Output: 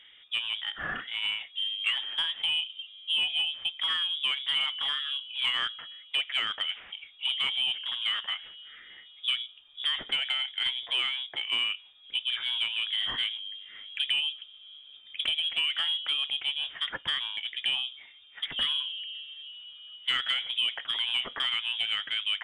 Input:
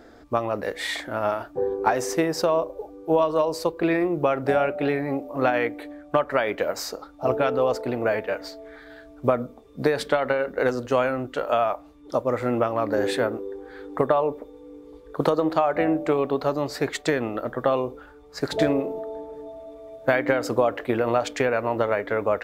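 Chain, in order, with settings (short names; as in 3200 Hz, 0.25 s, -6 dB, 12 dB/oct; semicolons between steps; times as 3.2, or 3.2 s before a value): inverted band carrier 3600 Hz; overdrive pedal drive 12 dB, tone 1300 Hz, clips at -4.5 dBFS; gain -5.5 dB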